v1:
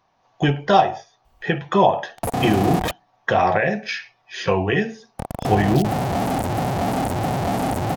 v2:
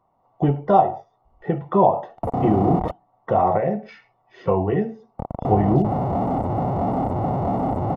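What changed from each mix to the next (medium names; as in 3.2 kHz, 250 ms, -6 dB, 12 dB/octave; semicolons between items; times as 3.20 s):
master: add Savitzky-Golay filter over 65 samples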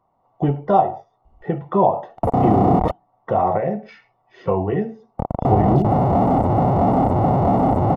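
background +6.0 dB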